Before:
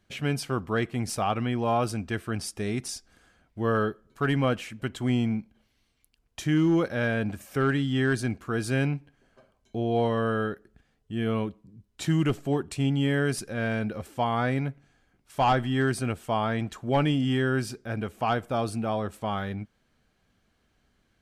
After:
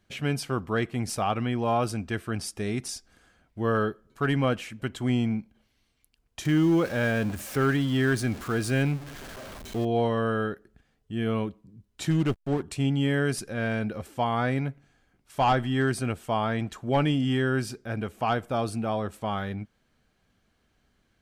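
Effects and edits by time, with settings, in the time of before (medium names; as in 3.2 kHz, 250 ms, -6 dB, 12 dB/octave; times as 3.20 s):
6.45–9.85 s: jump at every zero crossing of -36 dBFS
12.10–12.62 s: hysteresis with a dead band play -28.5 dBFS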